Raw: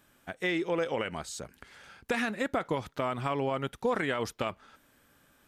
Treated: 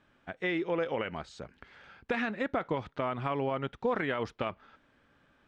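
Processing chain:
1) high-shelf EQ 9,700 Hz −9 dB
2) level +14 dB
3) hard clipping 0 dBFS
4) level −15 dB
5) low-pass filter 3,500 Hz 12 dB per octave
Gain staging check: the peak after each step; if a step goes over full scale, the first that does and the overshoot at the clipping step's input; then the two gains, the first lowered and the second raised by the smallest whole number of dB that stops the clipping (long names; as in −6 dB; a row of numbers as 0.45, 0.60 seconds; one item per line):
−16.5, −2.5, −2.5, −17.5, −18.0 dBFS
no step passes full scale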